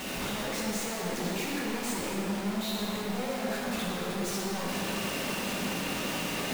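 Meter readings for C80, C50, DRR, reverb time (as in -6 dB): -1.0 dB, -2.5 dB, -6.0 dB, 2.8 s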